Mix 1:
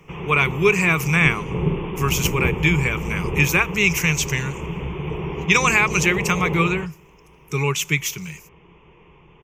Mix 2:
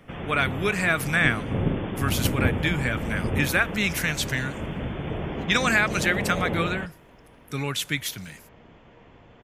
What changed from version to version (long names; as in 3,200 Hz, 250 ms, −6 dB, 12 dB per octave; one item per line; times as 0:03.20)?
speech −3.5 dB
second sound +12.0 dB
master: remove EQ curve with evenly spaced ripples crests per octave 0.75, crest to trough 14 dB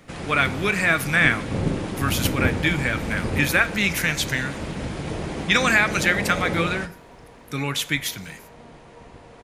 first sound: remove linear-phase brick-wall low-pass 3,600 Hz
second sound +10.5 dB
reverb: on, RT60 0.50 s